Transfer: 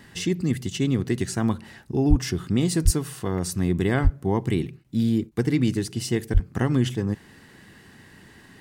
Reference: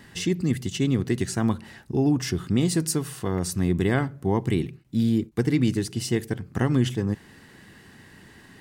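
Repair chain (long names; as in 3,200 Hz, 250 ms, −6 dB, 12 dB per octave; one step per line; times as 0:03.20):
high-pass at the plosives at 0:02.09/0:02.84/0:04.03/0:06.33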